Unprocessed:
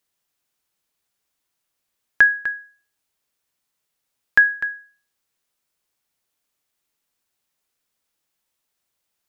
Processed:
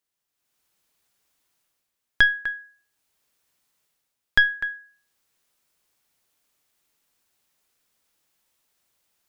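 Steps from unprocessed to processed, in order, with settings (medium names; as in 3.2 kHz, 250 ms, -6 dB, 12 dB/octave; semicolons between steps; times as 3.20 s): tracing distortion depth 0.063 ms; level rider gain up to 12 dB; trim -7 dB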